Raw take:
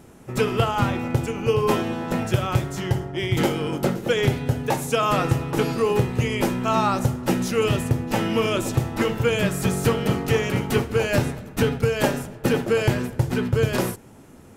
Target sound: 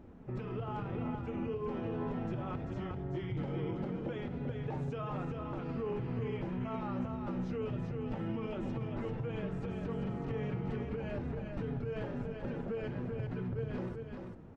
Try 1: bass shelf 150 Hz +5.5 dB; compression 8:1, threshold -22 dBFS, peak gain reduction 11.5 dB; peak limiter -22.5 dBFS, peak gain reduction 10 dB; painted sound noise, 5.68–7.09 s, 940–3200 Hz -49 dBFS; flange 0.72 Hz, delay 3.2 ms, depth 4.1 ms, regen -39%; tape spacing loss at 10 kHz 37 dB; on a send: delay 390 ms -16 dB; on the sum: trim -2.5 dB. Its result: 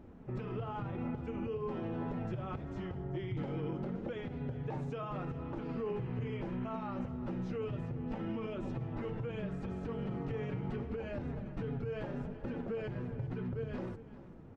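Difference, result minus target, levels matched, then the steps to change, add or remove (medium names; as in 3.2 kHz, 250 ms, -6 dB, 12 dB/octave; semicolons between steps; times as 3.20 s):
echo-to-direct -11 dB
change: delay 390 ms -5 dB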